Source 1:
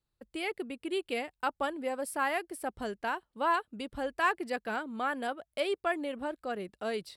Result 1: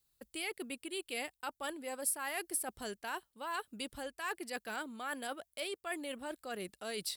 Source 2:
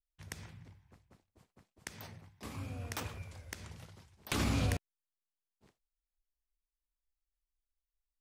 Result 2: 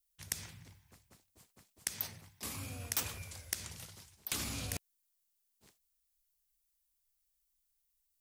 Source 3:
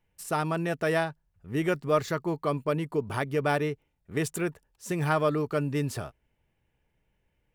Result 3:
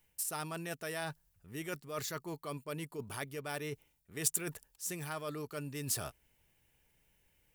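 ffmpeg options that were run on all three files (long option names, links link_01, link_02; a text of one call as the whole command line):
ffmpeg -i in.wav -af "areverse,acompressor=threshold=-38dB:ratio=6,areverse,crystalizer=i=5:c=0,volume=-2dB" out.wav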